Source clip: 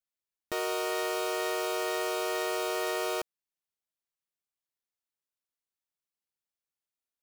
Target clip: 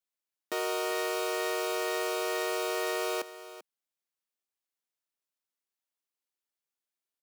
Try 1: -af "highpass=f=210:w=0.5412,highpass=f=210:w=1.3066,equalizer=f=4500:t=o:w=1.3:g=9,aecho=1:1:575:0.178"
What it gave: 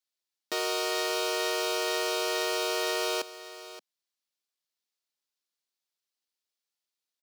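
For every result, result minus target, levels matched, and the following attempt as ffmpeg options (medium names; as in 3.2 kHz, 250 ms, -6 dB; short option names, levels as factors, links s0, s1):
echo 185 ms late; 4 kHz band +4.5 dB
-af "highpass=f=210:w=0.5412,highpass=f=210:w=1.3066,equalizer=f=4500:t=o:w=1.3:g=9,aecho=1:1:390:0.178"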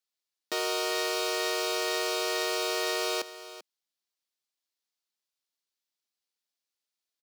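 4 kHz band +5.0 dB
-af "highpass=f=210:w=0.5412,highpass=f=210:w=1.3066,aecho=1:1:390:0.178"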